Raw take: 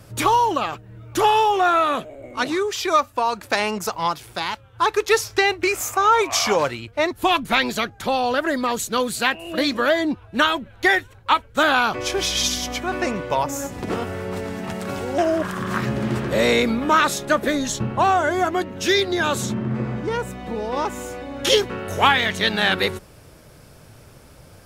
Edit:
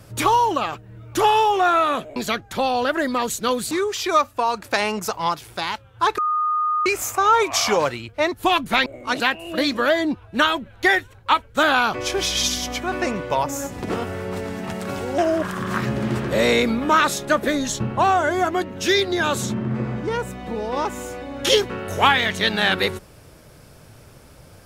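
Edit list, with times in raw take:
0:02.16–0:02.50: swap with 0:07.65–0:09.20
0:04.97–0:05.65: beep over 1,230 Hz −18 dBFS

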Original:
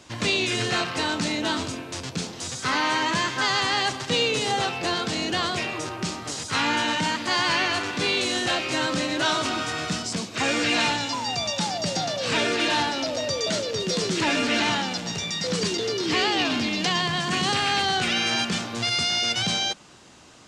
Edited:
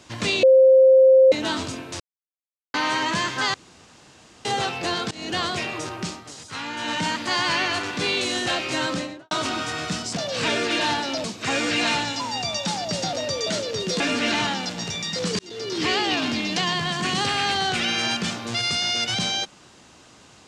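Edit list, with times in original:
0:00.43–0:01.32: beep over 526 Hz −9.5 dBFS
0:02.00–0:02.74: silence
0:03.54–0:04.45: fill with room tone
0:05.11–0:05.36: fade in, from −22 dB
0:05.92–0:07.08: duck −8.5 dB, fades 0.32 s equal-power
0:08.88–0:09.31: fade out and dull
0:12.06–0:13.13: move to 0:10.17
0:14.00–0:14.28: remove
0:15.67–0:16.07: fade in linear

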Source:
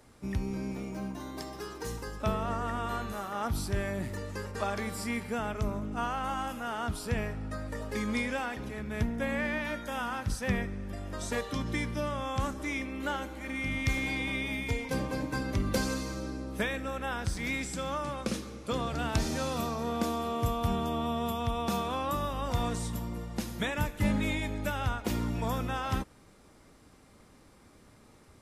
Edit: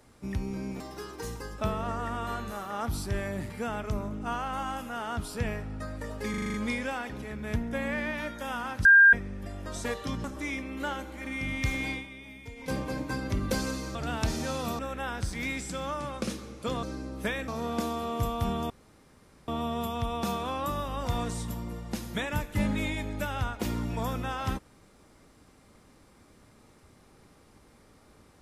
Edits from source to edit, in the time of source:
0:00.80–0:01.42: remove
0:04.12–0:05.21: remove
0:08.01: stutter 0.04 s, 7 plays
0:10.32–0:10.60: beep over 1,600 Hz −12.5 dBFS
0:11.71–0:12.47: remove
0:14.14–0:14.94: duck −12.5 dB, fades 0.15 s
0:16.18–0:16.83: swap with 0:18.87–0:19.71
0:20.93: splice in room tone 0.78 s

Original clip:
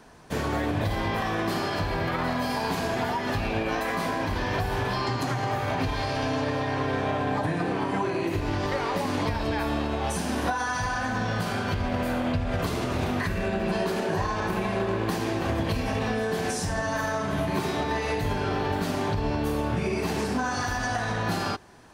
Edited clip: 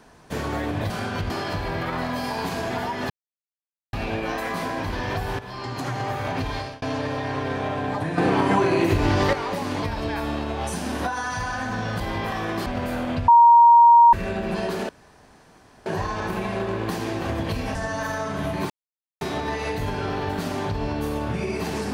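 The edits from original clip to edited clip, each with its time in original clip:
0:00.90–0:01.56: swap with 0:11.43–0:11.83
0:03.36: splice in silence 0.83 s
0:04.82–0:05.36: fade in, from −13.5 dB
0:05.99–0:06.25: fade out
0:07.61–0:08.76: clip gain +7.5 dB
0:12.45–0:13.30: beep over 940 Hz −8.5 dBFS
0:14.06: splice in room tone 0.97 s
0:15.95–0:16.69: remove
0:17.64: splice in silence 0.51 s

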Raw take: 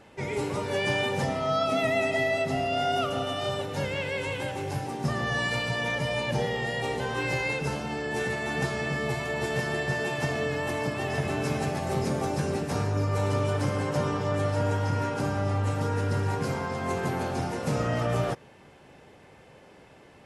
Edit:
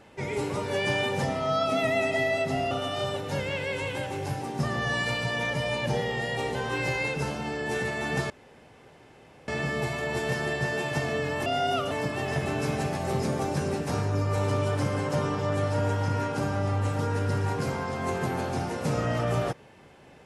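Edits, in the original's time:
0:02.71–0:03.16: move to 0:10.73
0:08.75: splice in room tone 1.18 s

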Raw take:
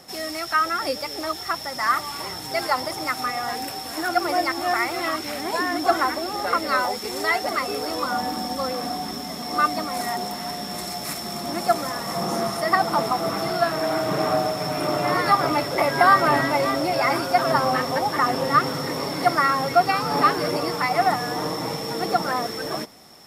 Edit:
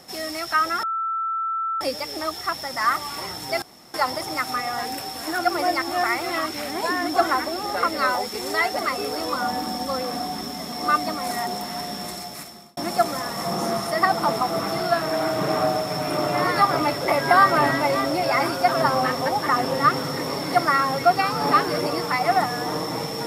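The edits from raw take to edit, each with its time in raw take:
0:00.83: insert tone 1,330 Hz −22.5 dBFS 0.98 s
0:02.64: splice in room tone 0.32 s
0:10.66–0:11.47: fade out

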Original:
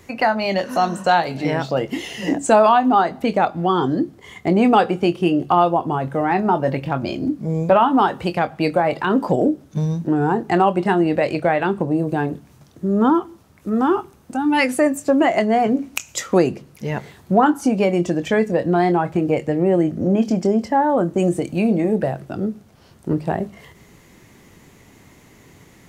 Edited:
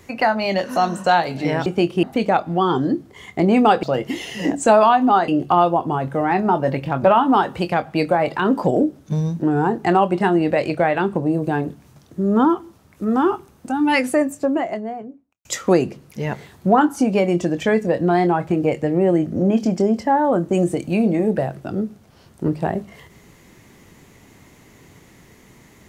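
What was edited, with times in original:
0:01.66–0:03.11: swap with 0:04.91–0:05.28
0:07.04–0:07.69: remove
0:14.51–0:16.10: fade out and dull

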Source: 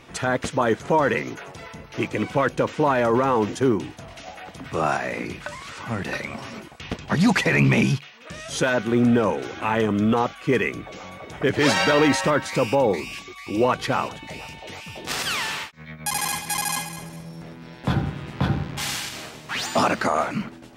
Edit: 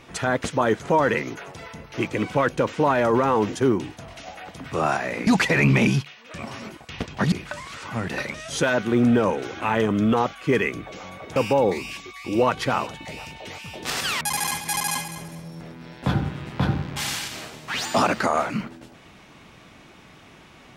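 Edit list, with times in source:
0:05.27–0:06.29: swap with 0:07.23–0:08.34
0:11.36–0:12.58: remove
0:15.43–0:16.02: remove

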